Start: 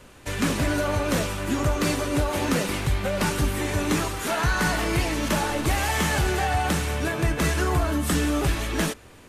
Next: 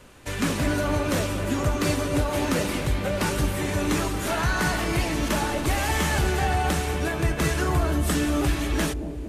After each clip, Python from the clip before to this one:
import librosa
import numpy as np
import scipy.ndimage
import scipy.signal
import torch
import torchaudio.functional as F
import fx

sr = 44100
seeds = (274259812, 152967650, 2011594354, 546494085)

y = fx.echo_bbd(x, sr, ms=231, stages=1024, feedback_pct=70, wet_db=-8.0)
y = y * librosa.db_to_amplitude(-1.0)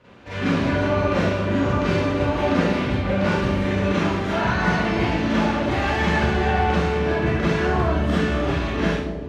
y = scipy.signal.sosfilt(scipy.signal.butter(2, 66.0, 'highpass', fs=sr, output='sos'), x)
y = fx.air_absorb(y, sr, metres=220.0)
y = fx.rev_schroeder(y, sr, rt60_s=0.65, comb_ms=32, drr_db=-9.5)
y = y * librosa.db_to_amplitude(-4.5)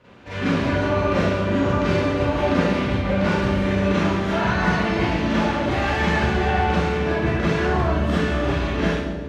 y = fx.echo_feedback(x, sr, ms=139, feedback_pct=43, wet_db=-12)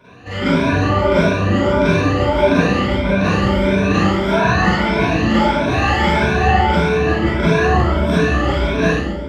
y = fx.spec_ripple(x, sr, per_octave=1.6, drift_hz=1.6, depth_db=16)
y = y * librosa.db_to_amplitude(3.0)